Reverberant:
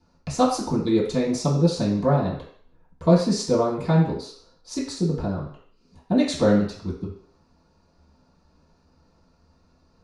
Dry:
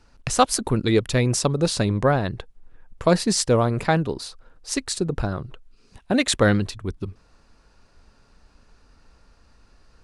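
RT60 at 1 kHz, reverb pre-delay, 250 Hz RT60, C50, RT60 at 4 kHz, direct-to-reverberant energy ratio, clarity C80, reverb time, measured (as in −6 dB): 0.55 s, 3 ms, 0.50 s, 5.5 dB, 0.60 s, −11.0 dB, 9.0 dB, 0.55 s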